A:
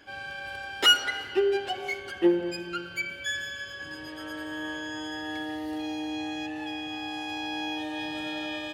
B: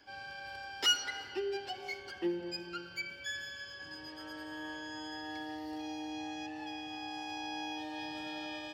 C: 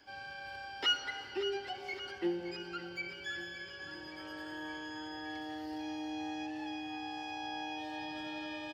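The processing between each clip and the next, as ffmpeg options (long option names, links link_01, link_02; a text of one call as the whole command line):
ffmpeg -i in.wav -filter_complex "[0:a]superequalizer=9b=1.58:14b=2.51:16b=0.631,acrossover=split=330|1600|3100[link_01][link_02][link_03][link_04];[link_02]alimiter=level_in=2.5dB:limit=-24dB:level=0:latency=1:release=351,volume=-2.5dB[link_05];[link_01][link_05][link_03][link_04]amix=inputs=4:normalize=0,volume=-8.5dB" out.wav
ffmpeg -i in.wav -filter_complex "[0:a]acrossover=split=3900[link_01][link_02];[link_02]acompressor=threshold=-58dB:ratio=4:attack=1:release=60[link_03];[link_01][link_03]amix=inputs=2:normalize=0,aecho=1:1:568|1136|1704|2272|2840|3408|3976:0.251|0.148|0.0874|0.0516|0.0304|0.018|0.0106" out.wav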